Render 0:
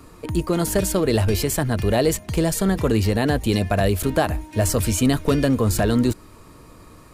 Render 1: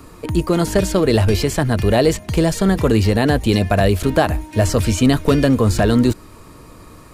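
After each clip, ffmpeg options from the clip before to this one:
ffmpeg -i in.wav -filter_complex "[0:a]acrossover=split=6600[link_01][link_02];[link_02]acompressor=threshold=-39dB:ratio=4:attack=1:release=60[link_03];[link_01][link_03]amix=inputs=2:normalize=0,volume=4.5dB" out.wav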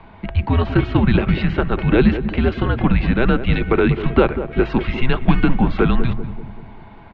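ffmpeg -i in.wav -filter_complex "[0:a]highpass=frequency=220:width_type=q:width=0.5412,highpass=frequency=220:width_type=q:width=1.307,lowpass=frequency=3400:width_type=q:width=0.5176,lowpass=frequency=3400:width_type=q:width=0.7071,lowpass=frequency=3400:width_type=q:width=1.932,afreqshift=-260,bandreject=frequency=60:width_type=h:width=6,bandreject=frequency=120:width_type=h:width=6,asplit=2[link_01][link_02];[link_02]adelay=193,lowpass=frequency=830:poles=1,volume=-9.5dB,asplit=2[link_03][link_04];[link_04]adelay=193,lowpass=frequency=830:poles=1,volume=0.54,asplit=2[link_05][link_06];[link_06]adelay=193,lowpass=frequency=830:poles=1,volume=0.54,asplit=2[link_07][link_08];[link_08]adelay=193,lowpass=frequency=830:poles=1,volume=0.54,asplit=2[link_09][link_10];[link_10]adelay=193,lowpass=frequency=830:poles=1,volume=0.54,asplit=2[link_11][link_12];[link_12]adelay=193,lowpass=frequency=830:poles=1,volume=0.54[link_13];[link_01][link_03][link_05][link_07][link_09][link_11][link_13]amix=inputs=7:normalize=0,volume=2dB" out.wav

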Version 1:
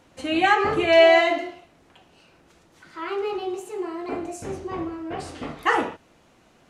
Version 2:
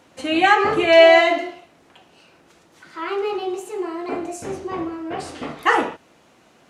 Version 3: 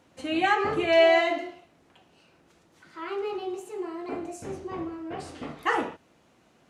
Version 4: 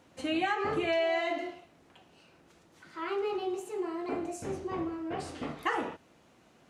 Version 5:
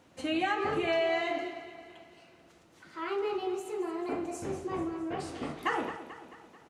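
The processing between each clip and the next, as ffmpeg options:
ffmpeg -i in.wav -af "highpass=frequency=170:poles=1,volume=4dB" out.wav
ffmpeg -i in.wav -af "lowshelf=frequency=240:gain=6.5,volume=-9dB" out.wav
ffmpeg -i in.wav -af "acompressor=threshold=-27dB:ratio=5" out.wav
ffmpeg -i in.wav -af "aecho=1:1:219|438|657|876|1095|1314:0.237|0.128|0.0691|0.0373|0.0202|0.0109" out.wav

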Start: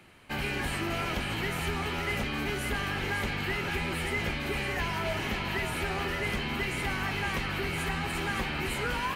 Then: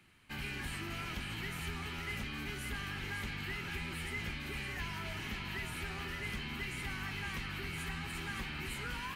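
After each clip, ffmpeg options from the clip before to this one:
ffmpeg -i in.wav -af "equalizer=frequency=580:width_type=o:width=1.4:gain=-11,volume=-7dB" out.wav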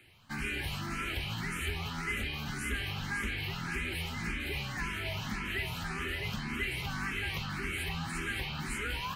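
ffmpeg -i in.wav -filter_complex "[0:a]asplit=2[link_01][link_02];[link_02]afreqshift=1.8[link_03];[link_01][link_03]amix=inputs=2:normalize=1,volume=7.5dB" out.wav

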